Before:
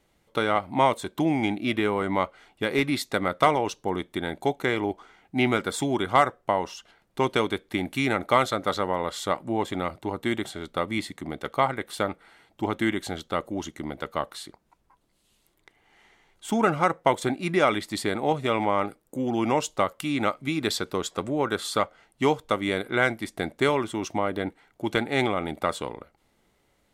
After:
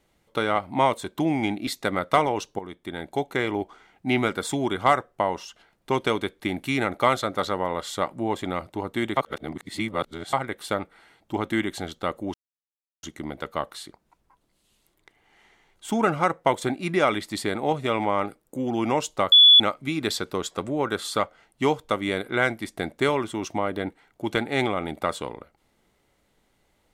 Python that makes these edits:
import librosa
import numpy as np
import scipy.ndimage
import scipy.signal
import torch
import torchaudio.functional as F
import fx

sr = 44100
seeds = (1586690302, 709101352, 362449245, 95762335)

y = fx.edit(x, sr, fx.cut(start_s=1.67, length_s=1.29),
    fx.fade_in_from(start_s=3.88, length_s=1.0, curve='qsin', floor_db=-12.5),
    fx.reverse_span(start_s=10.46, length_s=1.16),
    fx.insert_silence(at_s=13.63, length_s=0.69),
    fx.bleep(start_s=19.92, length_s=0.28, hz=3430.0, db=-9.0), tone=tone)